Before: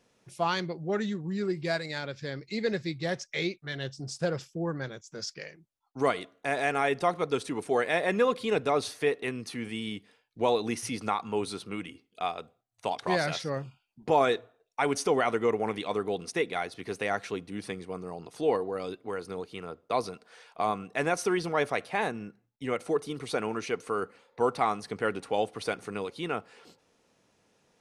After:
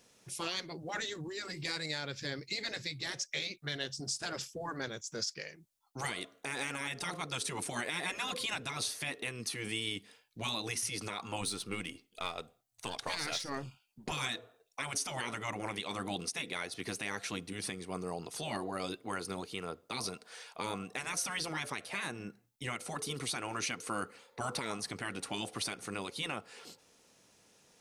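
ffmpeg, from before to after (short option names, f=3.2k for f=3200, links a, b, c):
-filter_complex "[0:a]asettb=1/sr,asplit=3[a][b][c];[a]atrim=end=11.414[d];[b]atrim=start=11.41:end=14.12,asetpts=PTS-STARTPTS,afade=t=in:d=0.004:c=qsin,afade=t=out:st=2.706:d=0.004:c=qsin,aeval=exprs='if(lt(val(0),0),0.708*val(0),val(0))':c=same[e];[c]atrim=start=14.116[f];[d][e]acrossfade=d=0.004:c1=hsin:c2=qsin[g];[g][f]acrossfade=d=0.004:c1=qsin:c2=hsin,afftfilt=real='re*lt(hypot(re,im),0.126)':imag='im*lt(hypot(re,im),0.126)':win_size=1024:overlap=0.75,highshelf=f=3.7k:g=11.5,alimiter=limit=-24dB:level=0:latency=1:release=235"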